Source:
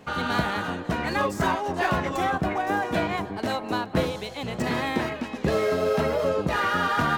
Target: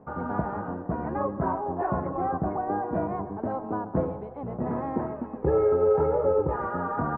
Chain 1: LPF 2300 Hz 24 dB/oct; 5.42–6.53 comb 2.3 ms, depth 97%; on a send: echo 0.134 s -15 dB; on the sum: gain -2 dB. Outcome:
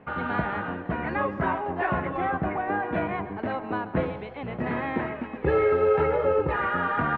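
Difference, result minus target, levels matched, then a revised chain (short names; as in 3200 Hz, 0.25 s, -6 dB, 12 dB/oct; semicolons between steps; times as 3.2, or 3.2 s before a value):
2000 Hz band +11.5 dB
LPF 1100 Hz 24 dB/oct; 5.42–6.53 comb 2.3 ms, depth 97%; on a send: echo 0.134 s -15 dB; on the sum: gain -2 dB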